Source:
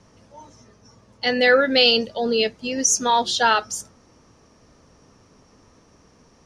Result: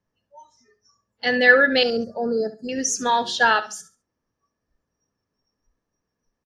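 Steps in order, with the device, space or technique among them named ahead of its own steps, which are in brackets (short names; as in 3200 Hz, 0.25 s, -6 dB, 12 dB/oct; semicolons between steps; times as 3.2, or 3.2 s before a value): inside a helmet (high shelf 5400 Hz -8 dB; small resonant body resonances 1700 Hz, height 11 dB, ringing for 30 ms); spectral noise reduction 25 dB; 1.83–2.69 elliptic band-stop 1400–5300 Hz, stop band 50 dB; feedback echo 69 ms, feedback 25%, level -15 dB; gain -1 dB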